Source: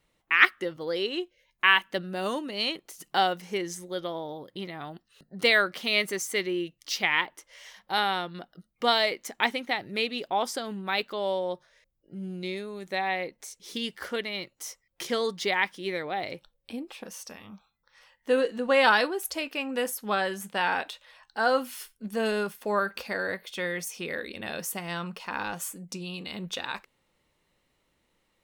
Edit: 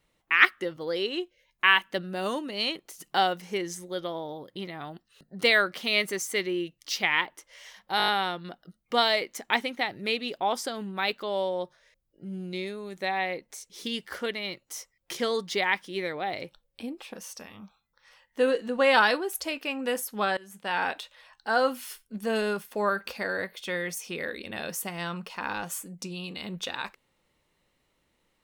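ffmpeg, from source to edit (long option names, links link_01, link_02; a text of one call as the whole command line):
ffmpeg -i in.wav -filter_complex "[0:a]asplit=7[link_01][link_02][link_03][link_04][link_05][link_06][link_07];[link_01]atrim=end=8.002[link_08];[link_02]atrim=start=7.978:end=8.002[link_09];[link_03]atrim=start=7.978:end=8.002[link_10];[link_04]atrim=start=7.978:end=8.002[link_11];[link_05]atrim=start=7.978:end=8.002[link_12];[link_06]atrim=start=7.978:end=20.27,asetpts=PTS-STARTPTS,afade=type=out:start_time=12.288:duration=0.004:curve=hsin:silence=0.0841395[link_13];[link_07]atrim=start=20.27,asetpts=PTS-STARTPTS,afade=type=in:duration=0.49:silence=0.0841395[link_14];[link_08][link_09]acrossfade=duration=0.004:curve1=hsin:curve2=hsin[link_15];[link_15][link_10]acrossfade=duration=0.004:curve1=hsin:curve2=hsin[link_16];[link_16][link_11]acrossfade=duration=0.004:curve1=hsin:curve2=hsin[link_17];[link_17][link_12]acrossfade=duration=0.004:curve1=hsin:curve2=hsin[link_18];[link_13][link_14]concat=n=2:v=0:a=1[link_19];[link_18][link_19]acrossfade=duration=0.004:curve1=hsin:curve2=hsin" out.wav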